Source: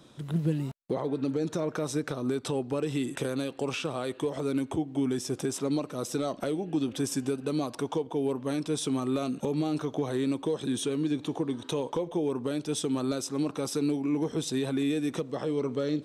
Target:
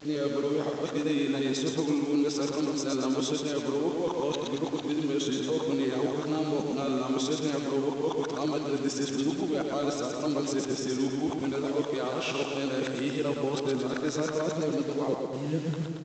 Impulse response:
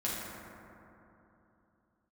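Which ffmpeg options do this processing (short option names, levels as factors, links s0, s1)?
-filter_complex "[0:a]areverse,equalizer=f=72:w=0.38:g=-7,acrusher=bits=7:mix=0:aa=0.000001,aecho=1:1:120|228|325.2|412.7|491.4:0.631|0.398|0.251|0.158|0.1,asplit=2[s0][s1];[1:a]atrim=start_sample=2205[s2];[s1][s2]afir=irnorm=-1:irlink=0,volume=0.1[s3];[s0][s3]amix=inputs=2:normalize=0" -ar 16000 -c:a pcm_alaw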